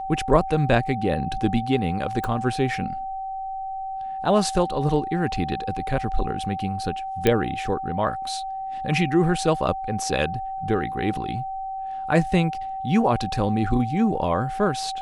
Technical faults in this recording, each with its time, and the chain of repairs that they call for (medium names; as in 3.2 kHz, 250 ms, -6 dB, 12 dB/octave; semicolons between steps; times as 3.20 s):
whine 770 Hz -28 dBFS
2.24 s: pop
7.27 s: pop -6 dBFS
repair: de-click; band-stop 770 Hz, Q 30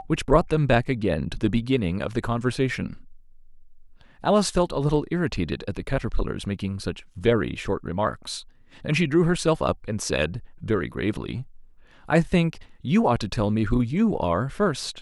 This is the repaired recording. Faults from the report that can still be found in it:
nothing left